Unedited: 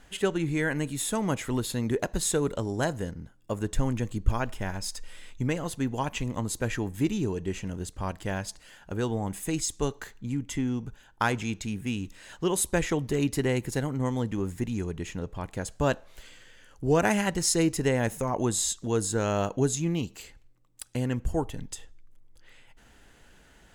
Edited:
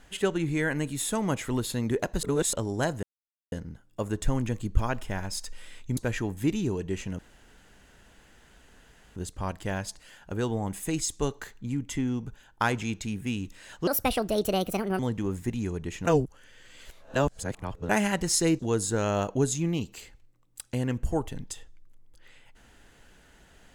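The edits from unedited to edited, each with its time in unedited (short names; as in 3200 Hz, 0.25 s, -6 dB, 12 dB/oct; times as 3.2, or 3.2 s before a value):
2.23–2.53 reverse
3.03 insert silence 0.49 s
5.48–6.54 cut
7.76 insert room tone 1.97 s
12.47–14.13 speed 148%
15.19–17.03 reverse
17.73–18.81 cut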